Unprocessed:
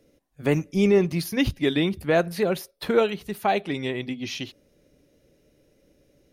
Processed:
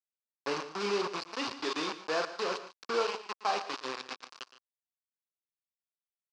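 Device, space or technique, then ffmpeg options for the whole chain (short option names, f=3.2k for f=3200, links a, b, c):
hand-held game console: -filter_complex "[0:a]asplit=2[a][b];[b]adelay=39,volume=-6.5dB[c];[a][c]amix=inputs=2:normalize=0,acrusher=bits=3:mix=0:aa=0.000001,highpass=490,equalizer=f=640:t=q:w=4:g=-6,equalizer=f=1.1k:t=q:w=4:g=8,equalizer=f=2k:t=q:w=4:g=-8,equalizer=f=3.4k:t=q:w=4:g=-6,equalizer=f=4.8k:t=q:w=4:g=4,lowpass=f=5.3k:w=0.5412,lowpass=f=5.3k:w=1.3066,aecho=1:1:115|147:0.168|0.15,volume=-7.5dB"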